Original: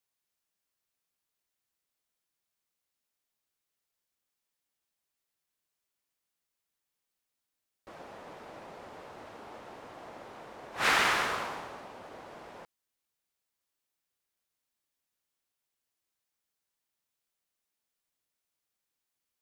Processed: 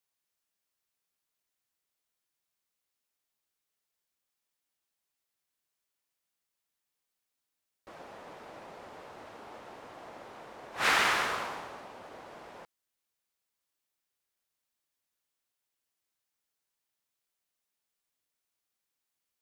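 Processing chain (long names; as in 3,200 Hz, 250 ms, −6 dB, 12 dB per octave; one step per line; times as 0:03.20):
low-shelf EQ 360 Hz −2.5 dB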